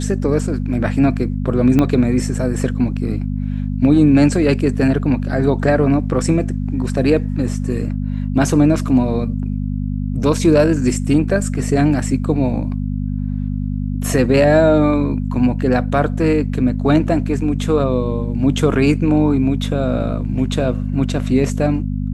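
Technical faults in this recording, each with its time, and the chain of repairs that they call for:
hum 50 Hz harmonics 5 -21 dBFS
1.79 s: pop -5 dBFS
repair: de-click; de-hum 50 Hz, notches 5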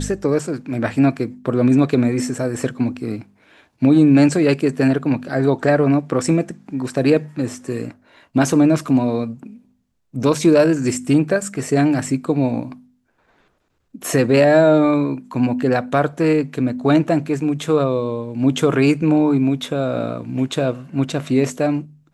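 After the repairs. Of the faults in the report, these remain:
1.79 s: pop

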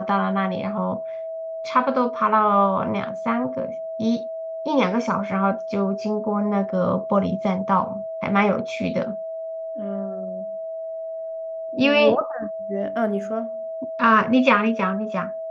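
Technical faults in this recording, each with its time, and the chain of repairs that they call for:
whine 650 Hz -28 dBFS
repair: band-stop 650 Hz, Q 30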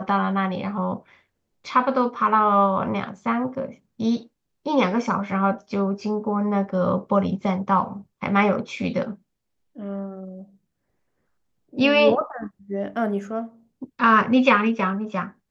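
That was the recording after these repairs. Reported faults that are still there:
nothing left

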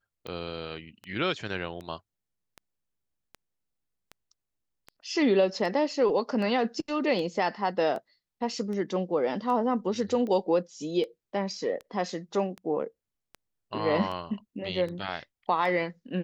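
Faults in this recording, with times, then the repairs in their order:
tick 78 rpm -26 dBFS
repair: de-click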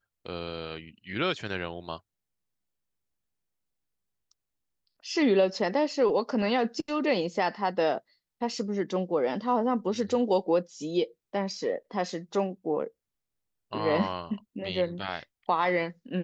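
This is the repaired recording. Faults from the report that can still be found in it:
nothing left

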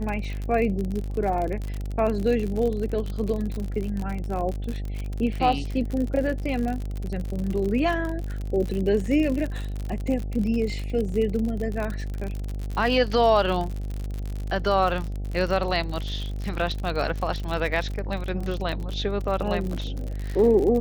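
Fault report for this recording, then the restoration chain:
buzz 50 Hz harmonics 16 -30 dBFS
crackle 54 per s -28 dBFS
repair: de-click; de-hum 50 Hz, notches 16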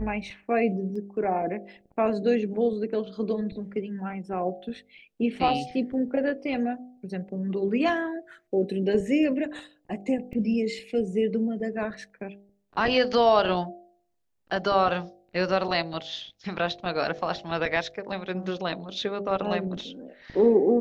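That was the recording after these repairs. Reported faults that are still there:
nothing left

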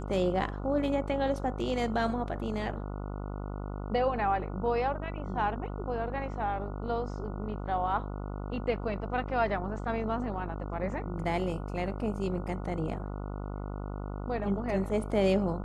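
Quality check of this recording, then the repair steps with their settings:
buzz 50 Hz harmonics 29 -37 dBFS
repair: de-hum 50 Hz, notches 29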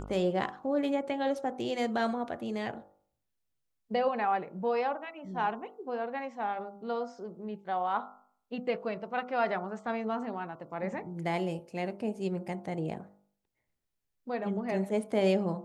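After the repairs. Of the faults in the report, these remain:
nothing left

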